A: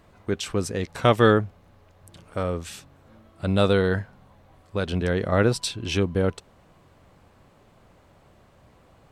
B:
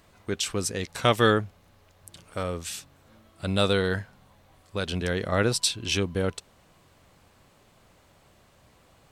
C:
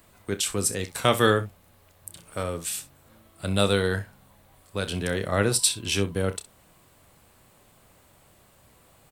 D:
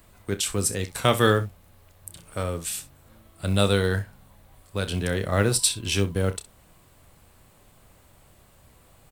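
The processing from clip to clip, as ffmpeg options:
-af "highshelf=f=2.3k:g=11,volume=-4.5dB"
-filter_complex "[0:a]acrossover=split=140[a][b];[b]aexciter=amount=3.2:drive=3.9:freq=8k[c];[a][c]amix=inputs=2:normalize=0,aecho=1:1:30|64:0.251|0.15"
-af "lowshelf=f=79:g=10.5,acrusher=bits=8:mode=log:mix=0:aa=0.000001"

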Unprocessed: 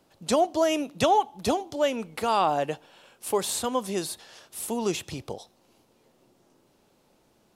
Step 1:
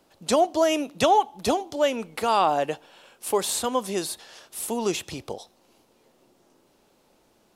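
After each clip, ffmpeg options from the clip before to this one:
-af "equalizer=f=120:w=0.92:g=-5.5,volume=2.5dB"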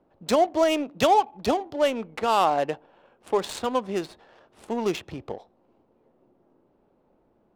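-af "adynamicsmooth=sensitivity=4:basefreq=1.1k"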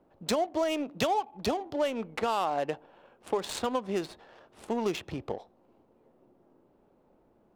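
-af "acompressor=threshold=-26dB:ratio=4"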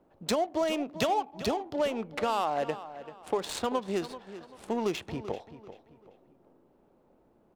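-filter_complex "[0:a]asplit=2[a][b];[b]adelay=388,lowpass=f=4.6k:p=1,volume=-13.5dB,asplit=2[c][d];[d]adelay=388,lowpass=f=4.6k:p=1,volume=0.34,asplit=2[e][f];[f]adelay=388,lowpass=f=4.6k:p=1,volume=0.34[g];[a][c][e][g]amix=inputs=4:normalize=0"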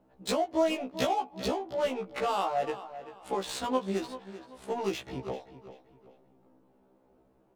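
-af "afftfilt=real='re*1.73*eq(mod(b,3),0)':imag='im*1.73*eq(mod(b,3),0)':win_size=2048:overlap=0.75,volume=1.5dB"

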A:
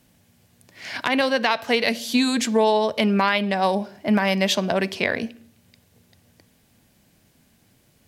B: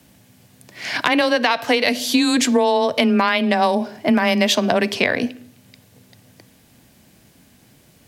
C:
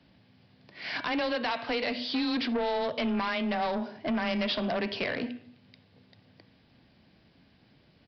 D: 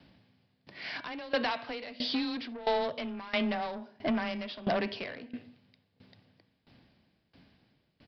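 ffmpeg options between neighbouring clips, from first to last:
-af "afreqshift=16,acompressor=threshold=-21dB:ratio=4,volume=7.5dB"
-af "bandreject=f=121.3:t=h:w=4,bandreject=f=242.6:t=h:w=4,bandreject=f=363.9:t=h:w=4,bandreject=f=485.2:t=h:w=4,bandreject=f=606.5:t=h:w=4,bandreject=f=727.8:t=h:w=4,bandreject=f=849.1:t=h:w=4,bandreject=f=970.4:t=h:w=4,bandreject=f=1.0917k:t=h:w=4,bandreject=f=1.213k:t=h:w=4,bandreject=f=1.3343k:t=h:w=4,bandreject=f=1.4556k:t=h:w=4,bandreject=f=1.5769k:t=h:w=4,bandreject=f=1.6982k:t=h:w=4,bandreject=f=1.8195k:t=h:w=4,bandreject=f=1.9408k:t=h:w=4,bandreject=f=2.0621k:t=h:w=4,bandreject=f=2.1834k:t=h:w=4,bandreject=f=2.3047k:t=h:w=4,bandreject=f=2.426k:t=h:w=4,bandreject=f=2.5473k:t=h:w=4,bandreject=f=2.6686k:t=h:w=4,bandreject=f=2.7899k:t=h:w=4,bandreject=f=2.9112k:t=h:w=4,bandreject=f=3.0325k:t=h:w=4,bandreject=f=3.1538k:t=h:w=4,bandreject=f=3.2751k:t=h:w=4,bandreject=f=3.3964k:t=h:w=4,bandreject=f=3.5177k:t=h:w=4,bandreject=f=3.639k:t=h:w=4,bandreject=f=3.7603k:t=h:w=4,aresample=11025,asoftclip=type=tanh:threshold=-17dB,aresample=44100,volume=-8dB"
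-af "aeval=exprs='val(0)*pow(10,-20*if(lt(mod(1.5*n/s,1),2*abs(1.5)/1000),1-mod(1.5*n/s,1)/(2*abs(1.5)/1000),(mod(1.5*n/s,1)-2*abs(1.5)/1000)/(1-2*abs(1.5)/1000))/20)':c=same,volume=3.5dB"

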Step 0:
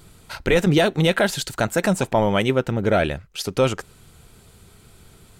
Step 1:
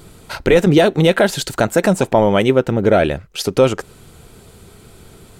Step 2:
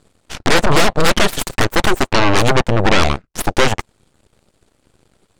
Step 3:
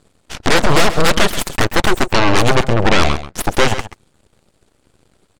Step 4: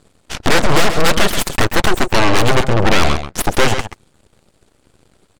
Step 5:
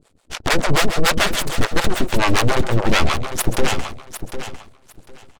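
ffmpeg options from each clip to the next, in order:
-filter_complex "[0:a]equalizer=f=410:w=0.63:g=5.5,asplit=2[a][b];[b]acompressor=threshold=-22dB:ratio=6,volume=-2dB[c];[a][c]amix=inputs=2:normalize=0"
-af "lowpass=f=9.8k:w=0.5412,lowpass=f=9.8k:w=1.3066,aeval=exprs='0.841*(cos(1*acos(clip(val(0)/0.841,-1,1)))-cos(1*PI/2))+0.299*(cos(3*acos(clip(val(0)/0.841,-1,1)))-cos(3*PI/2))+0.335*(cos(8*acos(clip(val(0)/0.841,-1,1)))-cos(8*PI/2))':c=same,volume=-1.5dB"
-af "aecho=1:1:133:0.224"
-af "aeval=exprs='(tanh(3.98*val(0)+0.45)-tanh(0.45))/3.98':c=same,volume=4dB"
-filter_complex "[0:a]acrossover=split=490[a][b];[a]aeval=exprs='val(0)*(1-1/2+1/2*cos(2*PI*6.9*n/s))':c=same[c];[b]aeval=exprs='val(0)*(1-1/2-1/2*cos(2*PI*6.9*n/s))':c=same[d];[c][d]amix=inputs=2:normalize=0,aecho=1:1:752|1504|2256:0.299|0.0567|0.0108"

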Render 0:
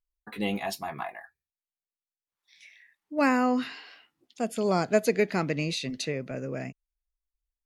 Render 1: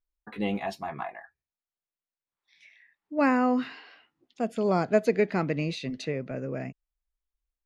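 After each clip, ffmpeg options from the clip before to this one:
-af "aemphasis=mode=reproduction:type=75fm"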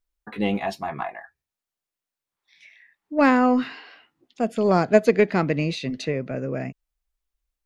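-af "aeval=exprs='0.316*(cos(1*acos(clip(val(0)/0.316,-1,1)))-cos(1*PI/2))+0.0251*(cos(3*acos(clip(val(0)/0.316,-1,1)))-cos(3*PI/2))+0.00251*(cos(6*acos(clip(val(0)/0.316,-1,1)))-cos(6*PI/2))':c=same,volume=7.5dB"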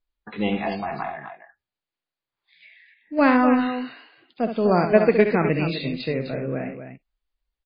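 -af "aecho=1:1:67.06|253.6:0.398|0.355" -ar 11025 -c:a libmp3lame -b:a 16k

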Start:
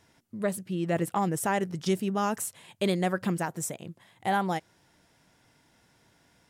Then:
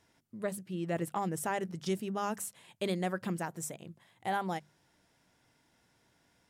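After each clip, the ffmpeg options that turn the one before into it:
-af "bandreject=f=50:t=h:w=6,bandreject=f=100:t=h:w=6,bandreject=f=150:t=h:w=6,bandreject=f=200:t=h:w=6,volume=-6dB"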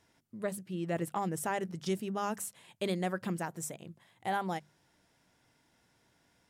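-af anull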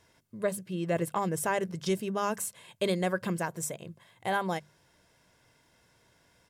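-af "aecho=1:1:1.9:0.36,volume=4.5dB"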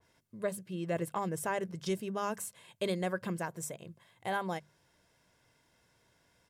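-af "adynamicequalizer=threshold=0.00708:dfrequency=2400:dqfactor=0.7:tfrequency=2400:tqfactor=0.7:attack=5:release=100:ratio=0.375:range=1.5:mode=cutabove:tftype=highshelf,volume=-4.5dB"

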